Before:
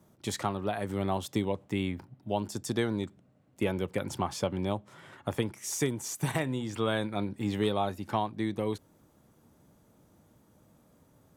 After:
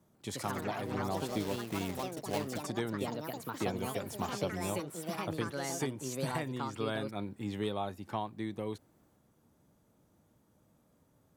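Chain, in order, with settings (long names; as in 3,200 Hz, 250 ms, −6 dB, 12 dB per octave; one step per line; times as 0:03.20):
0:01.40–0:02.61: one scale factor per block 3 bits
delay with pitch and tempo change per echo 142 ms, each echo +4 semitones, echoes 3
level −6.5 dB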